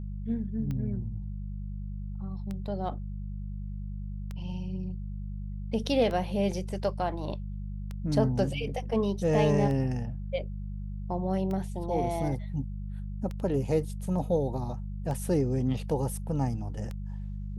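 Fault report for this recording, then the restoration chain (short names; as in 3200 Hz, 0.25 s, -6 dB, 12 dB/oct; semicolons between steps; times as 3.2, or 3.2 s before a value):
hum 50 Hz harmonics 4 -36 dBFS
tick 33 1/3 rpm -24 dBFS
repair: de-click; de-hum 50 Hz, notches 4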